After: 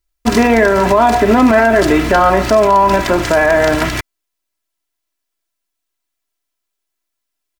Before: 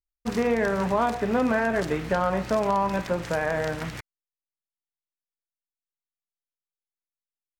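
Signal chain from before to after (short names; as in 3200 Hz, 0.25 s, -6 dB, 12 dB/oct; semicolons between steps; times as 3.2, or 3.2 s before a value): comb 3 ms, depth 66%; in parallel at -10.5 dB: bit-crush 7-bit; on the sum: maximiser +15.5 dB; gain -1 dB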